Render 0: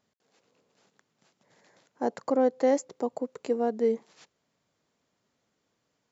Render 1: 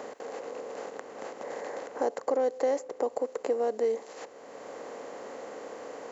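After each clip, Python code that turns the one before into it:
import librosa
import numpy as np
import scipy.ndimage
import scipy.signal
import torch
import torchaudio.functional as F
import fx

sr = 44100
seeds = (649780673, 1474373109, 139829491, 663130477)

y = fx.bin_compress(x, sr, power=0.6)
y = fx.low_shelf_res(y, sr, hz=300.0, db=-8.0, q=1.5)
y = fx.band_squash(y, sr, depth_pct=70)
y = y * 10.0 ** (-3.5 / 20.0)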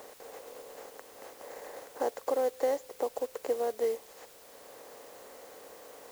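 y = fx.peak_eq(x, sr, hz=190.0, db=-5.5, octaves=1.5)
y = fx.quant_dither(y, sr, seeds[0], bits=8, dither='triangular')
y = fx.upward_expand(y, sr, threshold_db=-41.0, expansion=1.5)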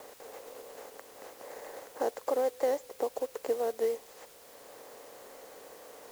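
y = fx.vibrato(x, sr, rate_hz=6.2, depth_cents=65.0)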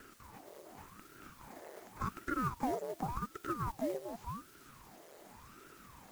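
y = fx.spec_quant(x, sr, step_db=15)
y = y + 10.0 ** (-6.5 / 20.0) * np.pad(y, (int(452 * sr / 1000.0), 0))[:len(y)]
y = fx.ring_lfo(y, sr, carrier_hz=470.0, swing_pct=85, hz=0.88)
y = y * 10.0 ** (-3.5 / 20.0)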